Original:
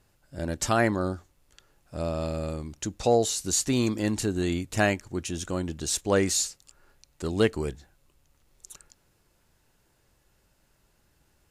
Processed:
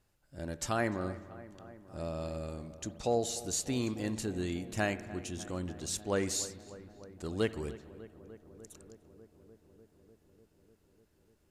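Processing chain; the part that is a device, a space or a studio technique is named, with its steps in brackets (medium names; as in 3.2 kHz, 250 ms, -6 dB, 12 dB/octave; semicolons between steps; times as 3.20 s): dub delay into a spring reverb (filtered feedback delay 298 ms, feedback 82%, low-pass 2.2 kHz, level -17 dB; spring tank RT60 1.4 s, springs 55 ms, chirp 35 ms, DRR 14.5 dB); trim -8.5 dB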